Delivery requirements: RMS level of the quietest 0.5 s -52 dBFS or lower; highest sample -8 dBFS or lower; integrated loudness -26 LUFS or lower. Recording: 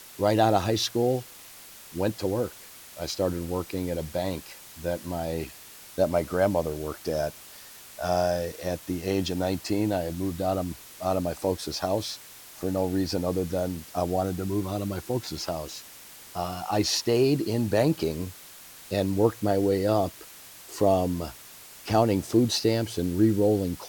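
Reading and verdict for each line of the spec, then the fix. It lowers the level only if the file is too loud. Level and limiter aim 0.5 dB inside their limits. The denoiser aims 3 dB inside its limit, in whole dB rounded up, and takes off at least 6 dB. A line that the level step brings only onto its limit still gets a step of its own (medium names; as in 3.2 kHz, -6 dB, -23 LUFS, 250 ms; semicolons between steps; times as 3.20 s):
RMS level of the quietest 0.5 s -47 dBFS: fail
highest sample -7.5 dBFS: fail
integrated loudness -27.5 LUFS: pass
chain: noise reduction 8 dB, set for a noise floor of -47 dBFS; peak limiter -8.5 dBFS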